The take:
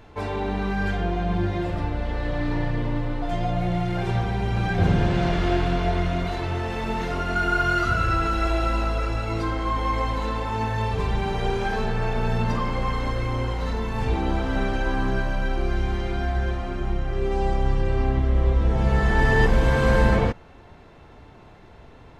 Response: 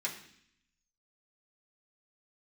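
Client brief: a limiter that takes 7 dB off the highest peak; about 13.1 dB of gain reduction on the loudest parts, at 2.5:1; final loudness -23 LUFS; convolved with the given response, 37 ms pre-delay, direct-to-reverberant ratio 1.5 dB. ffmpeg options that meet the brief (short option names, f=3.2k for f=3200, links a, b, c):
-filter_complex "[0:a]acompressor=threshold=-35dB:ratio=2.5,alimiter=level_in=4.5dB:limit=-24dB:level=0:latency=1,volume=-4.5dB,asplit=2[a][b];[1:a]atrim=start_sample=2205,adelay=37[c];[b][c]afir=irnorm=-1:irlink=0,volume=-4.5dB[d];[a][d]amix=inputs=2:normalize=0,volume=13.5dB"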